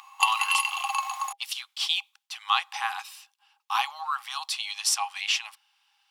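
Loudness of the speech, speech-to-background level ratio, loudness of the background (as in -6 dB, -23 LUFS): -29.0 LUFS, -2.5 dB, -26.5 LUFS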